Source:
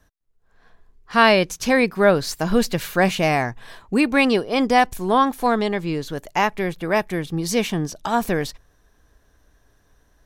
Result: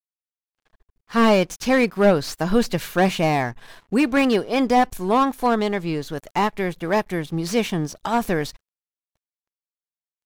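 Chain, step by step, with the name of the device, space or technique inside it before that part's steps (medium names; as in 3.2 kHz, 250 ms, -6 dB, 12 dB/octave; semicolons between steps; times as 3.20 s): early transistor amplifier (crossover distortion -47.5 dBFS; slew-rate limiter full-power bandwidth 210 Hz)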